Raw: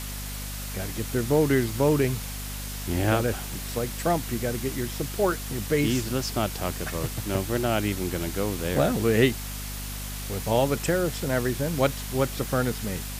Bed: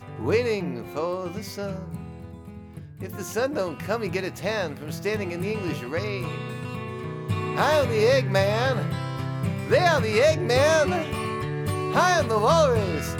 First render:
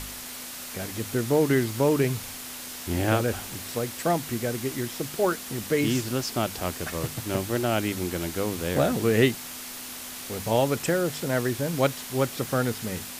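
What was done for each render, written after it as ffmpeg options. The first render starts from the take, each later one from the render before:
-af "bandreject=f=50:t=h:w=4,bandreject=f=100:t=h:w=4,bandreject=f=150:t=h:w=4,bandreject=f=200:t=h:w=4"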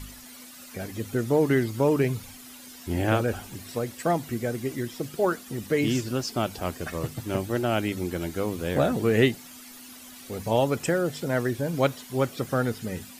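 -af "afftdn=nr=12:nf=-39"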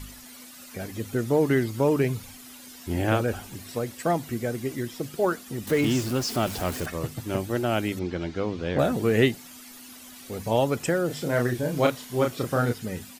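-filter_complex "[0:a]asettb=1/sr,asplit=3[a][b][c];[a]atrim=end=5.674[d];[b]atrim=start=5.67:end=6.86,asetpts=PTS-STARTPTS,afade=t=in:d=0.004:c=qsin,afade=t=out:st=1.186:d=0.004:c=qsin,aeval=exprs='val(0)+0.5*0.0266*sgn(val(0))':c=same[e];[c]atrim=start=6.856[f];[d][e]acrossfade=d=0.004:c1=hsin:c2=qsin[g];[g][f]acrossfade=d=0.004:c1=qsin:c2=hsin,asettb=1/sr,asplit=3[h][i][j];[h]atrim=end=7.994[k];[i]atrim=start=7.99:end=8.79,asetpts=PTS-STARTPTS,afade=t=in:d=0.004:c=qsin,afade=t=out:st=0.796:d=0.004:c=qsin,lowpass=f=5.2k:w=0.5412,lowpass=f=5.2k:w=1.3066[l];[j]atrim=start=8.786[m];[k][l]acrossfade=d=0.004:c1=hsin:c2=qsin[n];[n][m]acrossfade=d=0.004:c1=qsin:c2=hsin,asplit=3[o][p][q];[o]afade=t=out:st=11.09:d=0.02[r];[p]asplit=2[s][t];[t]adelay=33,volume=-3.5dB[u];[s][u]amix=inputs=2:normalize=0,afade=t=in:st=11.09:d=0.02,afade=t=out:st=12.72:d=0.02[v];[q]afade=t=in:st=12.72:d=0.02[w];[r][v][w]amix=inputs=3:normalize=0"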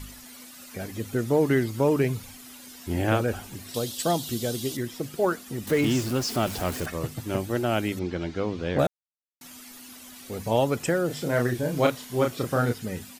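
-filter_complex "[0:a]asettb=1/sr,asplit=3[a][b][c];[a]atrim=end=3.744[d];[b]atrim=start=3.74:end=4.77,asetpts=PTS-STARTPTS,afade=t=in:d=0.004:c=qsin,afade=t=out:st=1.026:d=0.004:c=qsin,highshelf=f=2.7k:t=q:w=3:g=8[e];[c]atrim=start=4.766[f];[d][e]acrossfade=d=0.004:c1=hsin:c2=qsin[g];[g][f]acrossfade=d=0.004:c1=qsin:c2=hsin,asplit=3[h][i][j];[h]atrim=end=8.87,asetpts=PTS-STARTPTS,afade=t=out:st=8.866:d=0.004:c=hsin[k];[i]atrim=start=8.87:end=9.41,asetpts=PTS-STARTPTS,volume=0[l];[j]atrim=start=9.41,asetpts=PTS-STARTPTS,afade=t=in:d=0.004:c=hsin[m];[k][l][m]concat=n=3:v=0:a=1"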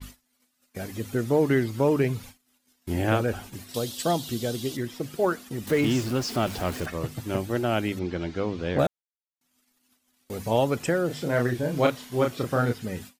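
-af "agate=range=-28dB:threshold=-41dB:ratio=16:detection=peak,adynamicequalizer=threshold=0.00398:dfrequency=5600:dqfactor=0.7:tfrequency=5600:tqfactor=0.7:attack=5:release=100:ratio=0.375:range=3:mode=cutabove:tftype=highshelf"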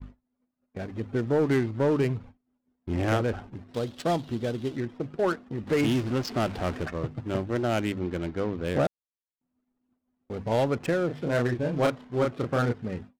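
-af "asoftclip=type=tanh:threshold=-15.5dB,adynamicsmooth=sensitivity=7.5:basefreq=660"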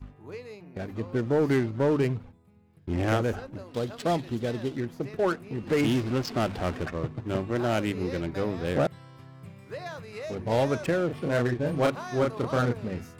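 -filter_complex "[1:a]volume=-18.5dB[a];[0:a][a]amix=inputs=2:normalize=0"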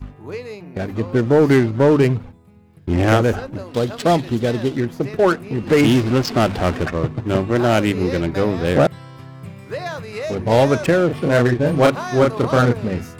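-af "volume=10.5dB"

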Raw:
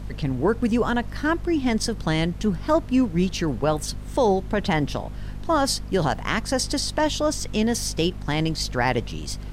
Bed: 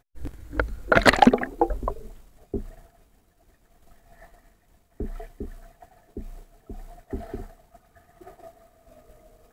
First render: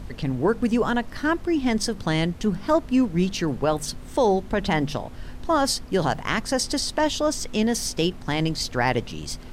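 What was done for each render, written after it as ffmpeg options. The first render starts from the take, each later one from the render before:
-af "bandreject=f=50:t=h:w=4,bandreject=f=100:t=h:w=4,bandreject=f=150:t=h:w=4,bandreject=f=200:t=h:w=4"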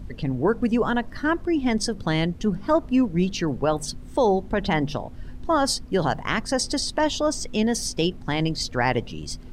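-af "afftdn=nr=9:nf=-39"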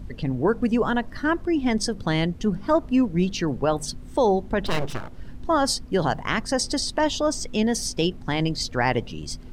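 -filter_complex "[0:a]asettb=1/sr,asplit=3[a][b][c];[a]atrim=end=4.664[d];[b]atrim=start=4.66:end=5.35,asetpts=PTS-STARTPTS,afade=t=in:d=0.004:c=qsin,afade=t=out:st=0.686:d=0.004:c=qsin,aeval=exprs='abs(val(0))':c=same[e];[c]atrim=start=5.346[f];[d][e]acrossfade=d=0.004:c1=hsin:c2=qsin[g];[g][f]acrossfade=d=0.004:c1=qsin:c2=hsin"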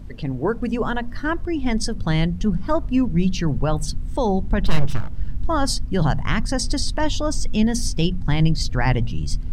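-af "bandreject=f=60:t=h:w=6,bandreject=f=120:t=h:w=6,bandreject=f=180:t=h:w=6,bandreject=f=240:t=h:w=6,asubboost=boost=6:cutoff=160"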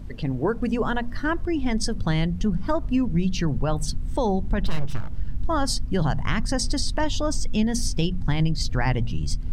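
-af "acompressor=threshold=-19dB:ratio=2.5"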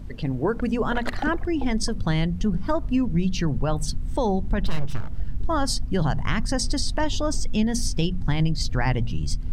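-filter_complex "[1:a]volume=-16dB[a];[0:a][a]amix=inputs=2:normalize=0"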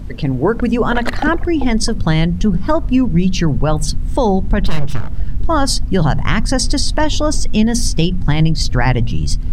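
-af "volume=9dB,alimiter=limit=-2dB:level=0:latency=1"

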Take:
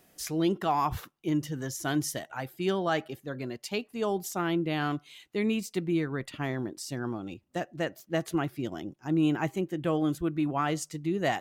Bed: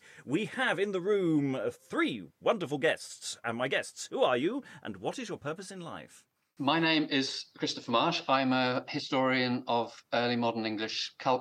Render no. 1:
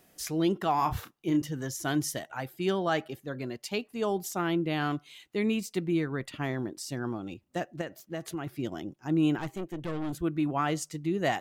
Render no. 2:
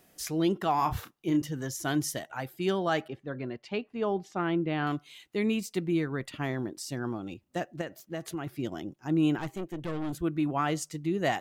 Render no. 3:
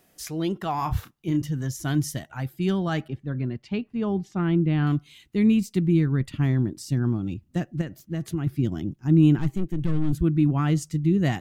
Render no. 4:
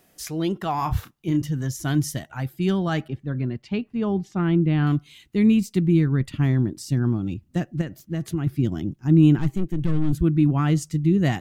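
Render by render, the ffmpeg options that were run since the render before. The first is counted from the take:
-filter_complex "[0:a]asettb=1/sr,asplit=3[a][b][c];[a]atrim=end=0.764[d];[b]atrim=start=0.76:end=1.42,asetpts=PTS-STARTPTS,afade=t=in:d=0.004:c=qsin,afade=t=out:st=0.656:d=0.004:c=qsin,asplit=2[e][f];[f]adelay=30,volume=-8.5dB[g];[e][g]amix=inputs=2:normalize=0,atrim=end_sample=29106[h];[c]atrim=start=1.416[i];[d][h]acrossfade=d=0.004:c1=hsin:c2=qsin[j];[j][i]acrossfade=d=0.004:c1=qsin:c2=hsin,asettb=1/sr,asplit=3[k][l][m];[k]atrim=end=7.814[n];[l]atrim=start=7.81:end=8.47,asetpts=PTS-STARTPTS,afade=t=in:d=0.004:c=qsin,afade=t=out:st=0.656:d=0.004:c=qsin,acompressor=threshold=-34dB:ratio=2.5:attack=3.2:release=140:knee=1:detection=peak[o];[m]atrim=start=8.466[p];[n][o]acrossfade=d=0.004:c1=hsin:c2=qsin[q];[q][p]acrossfade=d=0.004:c1=qsin:c2=hsin,asettb=1/sr,asplit=3[r][s][t];[r]atrim=end=9.384[u];[s]atrim=start=9.38:end=10.13,asetpts=PTS-STARTPTS,afade=t=in:d=0.004:c=qsin,afade=t=out:st=0.746:d=0.004:c=qsin,aeval=exprs='(tanh(31.6*val(0)+0.6)-tanh(0.6))/31.6':c=same[v];[t]atrim=start=10.126[w];[u][v]acrossfade=d=0.004:c1=hsin:c2=qsin[x];[x][w]acrossfade=d=0.004:c1=qsin:c2=hsin"
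-filter_complex "[0:a]asettb=1/sr,asplit=3[a][b][c];[a]atrim=end=3.084[d];[b]atrim=start=3.08:end=4.87,asetpts=PTS-STARTPTS,afade=t=in:d=0.004:c=qsin,afade=t=out:st=1.786:d=0.004:c=qsin,lowpass=2.7k[e];[c]atrim=start=4.866[f];[d][e]acrossfade=d=0.004:c1=hsin:c2=qsin[g];[g][f]acrossfade=d=0.004:c1=qsin:c2=hsin"
-af "asubboost=boost=8.5:cutoff=200"
-af "volume=2dB"

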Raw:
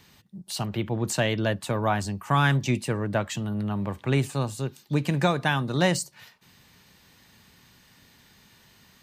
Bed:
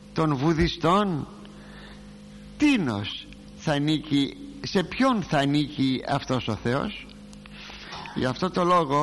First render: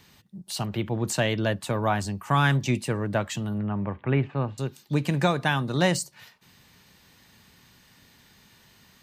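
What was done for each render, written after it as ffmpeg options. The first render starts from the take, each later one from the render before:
-filter_complex "[0:a]asettb=1/sr,asplit=3[a][b][c];[a]atrim=end=3.584[d];[b]atrim=start=3.58:end=4.58,asetpts=PTS-STARTPTS,afade=t=in:d=0.004:c=qsin,afade=t=out:st=0.996:d=0.004:c=qsin,lowpass=f=2.5k:w=0.5412,lowpass=f=2.5k:w=1.3066[e];[c]atrim=start=4.576[f];[d][e]acrossfade=d=0.004:c1=hsin:c2=qsin[g];[g][f]acrossfade=d=0.004:c1=qsin:c2=hsin"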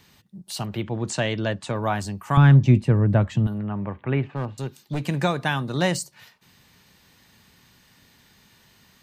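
-filter_complex "[0:a]asettb=1/sr,asplit=3[a][b][c];[a]atrim=end=0.824[d];[b]atrim=start=0.82:end=1.76,asetpts=PTS-STARTPTS,afade=t=in:d=0.004:c=qsin,afade=t=out:st=0.936:d=0.004:c=qsin,lowpass=f=8.4k:w=0.5412,lowpass=f=8.4k:w=1.3066[e];[c]atrim=start=1.756[f];[d][e]acrossfade=d=0.004:c1=hsin:c2=qsin[g];[g][f]acrossfade=d=0.004:c1=qsin:c2=hsin,asettb=1/sr,asplit=3[h][i][j];[h]atrim=end=2.374[k];[i]atrim=start=2.37:end=3.47,asetpts=PTS-STARTPTS,afade=t=in:d=0.004:c=qsin,afade=t=out:st=1.096:d=0.004:c=qsin,aemphasis=mode=reproduction:type=riaa[l];[j]atrim=start=3.466[m];[k][l]acrossfade=d=0.004:c1=hsin:c2=qsin[n];[n][m]acrossfade=d=0.004:c1=qsin:c2=hsin,asettb=1/sr,asplit=3[o][p][q];[o]atrim=end=4.274[r];[p]atrim=start=4.27:end=5.08,asetpts=PTS-STARTPTS,afade=t=in:d=0.004:c=qsin,afade=t=out:st=0.806:d=0.004:c=qsin,volume=22.5dB,asoftclip=hard,volume=-22.5dB[s];[q]atrim=start=5.076[t];[r][s]acrossfade=d=0.004:c1=hsin:c2=qsin[u];[u][t]acrossfade=d=0.004:c1=qsin:c2=hsin"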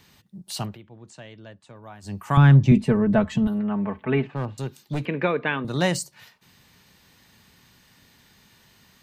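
-filter_complex "[0:a]asettb=1/sr,asplit=3[a][b][c];[a]atrim=end=2.714[d];[b]atrim=start=2.71:end=4.27,asetpts=PTS-STARTPTS,afade=t=in:d=0.004:c=qsin,afade=t=out:st=1.556:d=0.004:c=qsin,aecho=1:1:4.6:0.9,atrim=end_sample=68796[e];[c]atrim=start=4.266[f];[d][e]acrossfade=d=0.004:c1=hsin:c2=qsin[g];[g][f]acrossfade=d=0.004:c1=qsin:c2=hsin,asettb=1/sr,asplit=3[h][i][j];[h]atrim=end=5.054[k];[i]atrim=start=5.05:end=5.65,asetpts=PTS-STARTPTS,afade=t=in:d=0.004:c=qsin,afade=t=out:st=0.596:d=0.004:c=qsin,highpass=220,equalizer=f=260:t=q:w=4:g=4,equalizer=f=450:t=q:w=4:g=9,equalizer=f=770:t=q:w=4:g=-8,equalizer=f=2.3k:t=q:w=4:g=6,lowpass=f=2.9k:w=0.5412,lowpass=f=2.9k:w=1.3066[l];[j]atrim=start=5.646[m];[k][l]acrossfade=d=0.004:c1=hsin:c2=qsin[n];[n][m]acrossfade=d=0.004:c1=qsin:c2=hsin,asplit=3[o][p][q];[o]atrim=end=0.78,asetpts=PTS-STARTPTS,afade=t=out:st=0.66:d=0.12:silence=0.11885[r];[p]atrim=start=0.78:end=2.02,asetpts=PTS-STARTPTS,volume=-18.5dB[s];[q]atrim=start=2.02,asetpts=PTS-STARTPTS,afade=t=in:d=0.12:silence=0.11885[t];[r][s][t]concat=n=3:v=0:a=1"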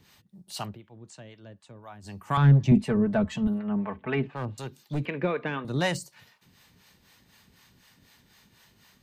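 -filter_complex "[0:a]asoftclip=type=tanh:threshold=-9.5dB,acrossover=split=530[a][b];[a]aeval=exprs='val(0)*(1-0.7/2+0.7/2*cos(2*PI*4*n/s))':c=same[c];[b]aeval=exprs='val(0)*(1-0.7/2-0.7/2*cos(2*PI*4*n/s))':c=same[d];[c][d]amix=inputs=2:normalize=0"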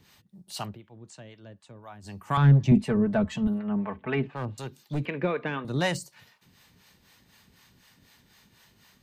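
-af anull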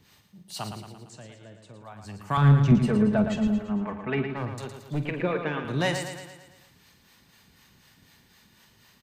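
-filter_complex "[0:a]asplit=2[a][b];[b]adelay=47,volume=-13dB[c];[a][c]amix=inputs=2:normalize=0,aecho=1:1:113|226|339|452|565|678|791:0.422|0.228|0.123|0.0664|0.0359|0.0194|0.0105"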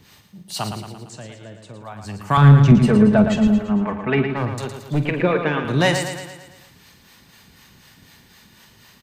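-af "volume=8.5dB,alimiter=limit=-3dB:level=0:latency=1"

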